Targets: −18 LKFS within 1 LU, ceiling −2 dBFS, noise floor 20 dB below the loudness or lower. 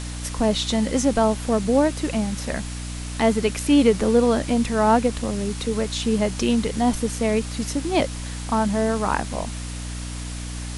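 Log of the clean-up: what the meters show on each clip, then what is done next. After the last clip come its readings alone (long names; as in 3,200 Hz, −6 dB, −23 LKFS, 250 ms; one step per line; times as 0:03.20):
mains hum 60 Hz; hum harmonics up to 300 Hz; level of the hum −29 dBFS; background noise floor −31 dBFS; target noise floor −43 dBFS; integrated loudness −22.5 LKFS; sample peak −4.5 dBFS; target loudness −18.0 LKFS
→ hum removal 60 Hz, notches 5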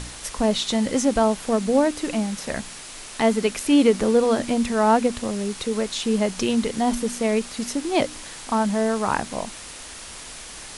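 mains hum none found; background noise floor −39 dBFS; target noise floor −43 dBFS
→ broadband denoise 6 dB, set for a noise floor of −39 dBFS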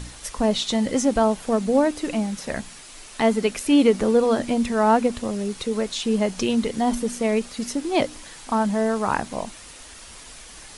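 background noise floor −43 dBFS; integrated loudness −22.5 LKFS; sample peak −5.5 dBFS; target loudness −18.0 LKFS
→ level +4.5 dB
brickwall limiter −2 dBFS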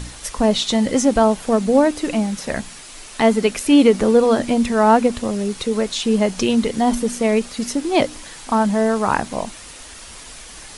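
integrated loudness −18.0 LKFS; sample peak −2.0 dBFS; background noise floor −39 dBFS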